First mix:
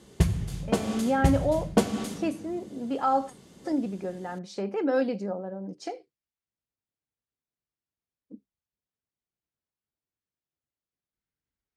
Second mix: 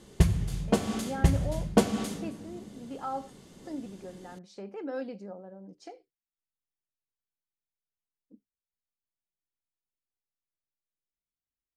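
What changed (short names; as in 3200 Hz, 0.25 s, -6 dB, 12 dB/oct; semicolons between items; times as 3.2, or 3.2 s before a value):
speech -10.5 dB; master: remove HPF 49 Hz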